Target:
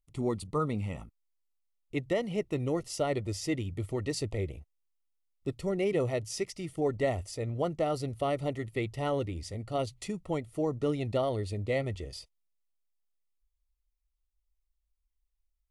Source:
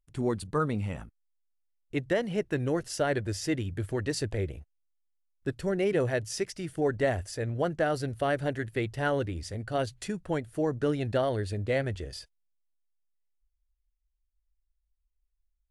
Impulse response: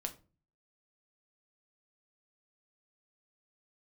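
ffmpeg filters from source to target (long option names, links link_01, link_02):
-af "asuperstop=centerf=1600:order=8:qfactor=3.5,volume=-2dB"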